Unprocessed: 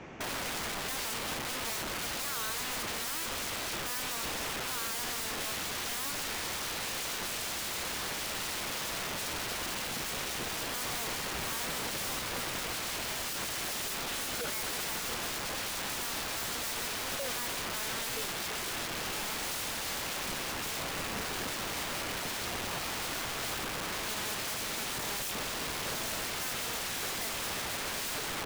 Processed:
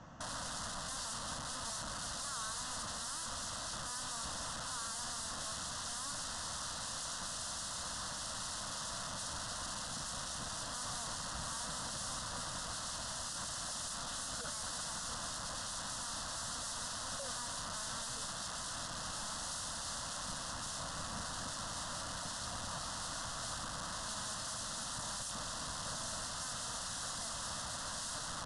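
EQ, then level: elliptic low-pass 10000 Hz, stop band 40 dB; bell 820 Hz -7.5 dB 0.27 oct; fixed phaser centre 960 Hz, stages 4; -1.0 dB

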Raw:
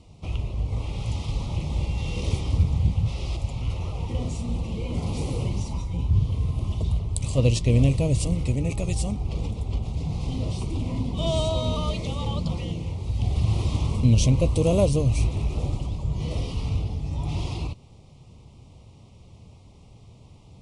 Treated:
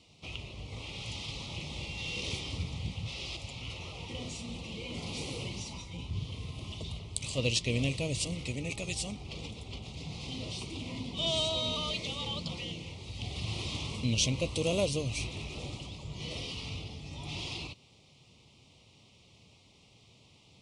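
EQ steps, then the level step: weighting filter D; -8.0 dB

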